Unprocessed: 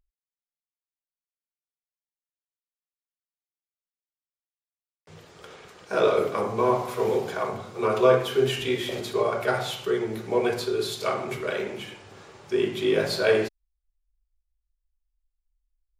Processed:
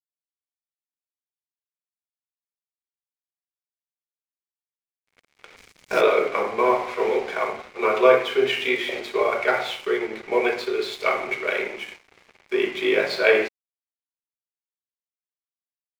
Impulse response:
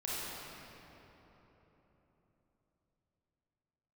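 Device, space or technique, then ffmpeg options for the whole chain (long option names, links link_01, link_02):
pocket radio on a weak battery: -filter_complex "[0:a]highpass=350,lowpass=4200,aeval=exprs='sgn(val(0))*max(abs(val(0))-0.00501,0)':channel_layout=same,equalizer=frequency=2200:width_type=o:width=0.4:gain=10,asplit=3[link_01][link_02][link_03];[link_01]afade=type=out:start_time=5.56:duration=0.02[link_04];[link_02]bass=frequency=250:gain=9,treble=frequency=4000:gain=11,afade=type=in:start_time=5.56:duration=0.02,afade=type=out:start_time=6:duration=0.02[link_05];[link_03]afade=type=in:start_time=6:duration=0.02[link_06];[link_04][link_05][link_06]amix=inputs=3:normalize=0,volume=4dB"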